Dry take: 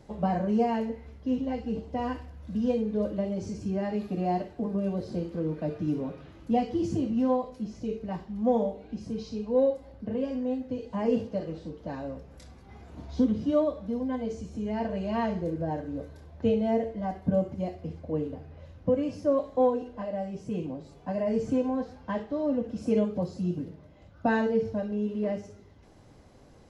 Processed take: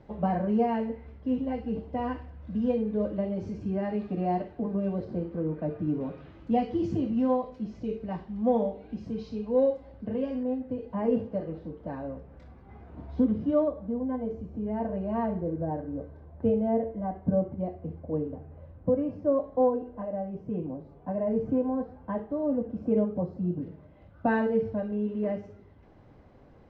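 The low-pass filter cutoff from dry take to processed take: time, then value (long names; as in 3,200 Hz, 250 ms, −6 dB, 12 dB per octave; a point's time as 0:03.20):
2,600 Hz
from 0:05.05 1,800 Hz
from 0:06.01 3,300 Hz
from 0:10.43 1,800 Hz
from 0:13.68 1,200 Hz
from 0:23.62 2,300 Hz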